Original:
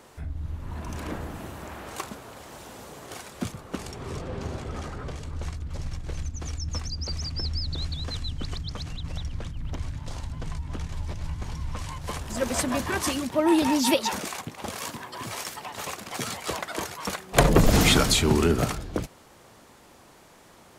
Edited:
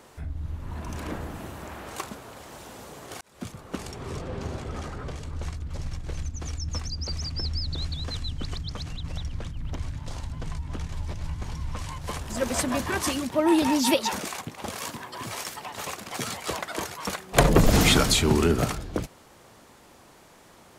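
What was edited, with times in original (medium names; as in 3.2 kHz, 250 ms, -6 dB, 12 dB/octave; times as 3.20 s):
3.21–3.86 s: fade in equal-power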